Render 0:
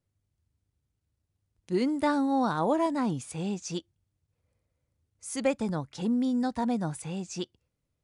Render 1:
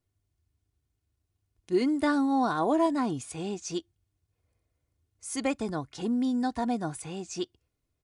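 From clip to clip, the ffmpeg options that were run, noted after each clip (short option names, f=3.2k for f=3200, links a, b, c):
-af "aecho=1:1:2.8:0.47"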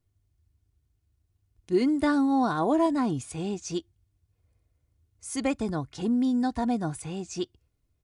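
-af "lowshelf=f=160:g=9.5"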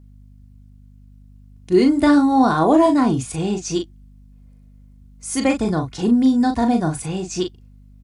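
-filter_complex "[0:a]asplit=2[a][b];[b]adelay=38,volume=-6dB[c];[a][c]amix=inputs=2:normalize=0,aeval=exprs='val(0)+0.00224*(sin(2*PI*50*n/s)+sin(2*PI*2*50*n/s)/2+sin(2*PI*3*50*n/s)/3+sin(2*PI*4*50*n/s)/4+sin(2*PI*5*50*n/s)/5)':c=same,volume=8.5dB"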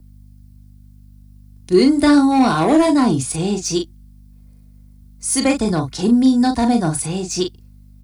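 -filter_complex "[0:a]acrossover=split=110|440|1500[a][b][c][d];[c]asoftclip=type=hard:threshold=-20dB[e];[d]aexciter=amount=1.5:drive=7.5:freq=4k[f];[a][b][e][f]amix=inputs=4:normalize=0,volume=2dB"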